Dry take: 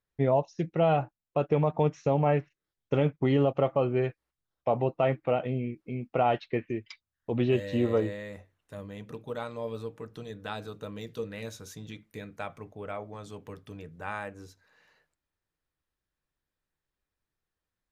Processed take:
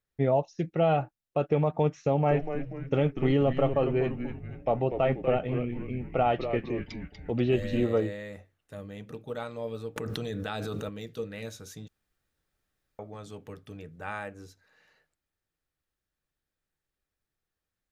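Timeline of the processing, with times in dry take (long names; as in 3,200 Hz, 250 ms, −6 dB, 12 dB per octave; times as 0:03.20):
0:02.04–0:07.85: echo with shifted repeats 241 ms, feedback 49%, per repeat −140 Hz, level −8 dB
0:09.96–0:10.89: envelope flattener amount 100%
0:11.88–0:12.99: fill with room tone
whole clip: notch filter 1,000 Hz, Q 7.9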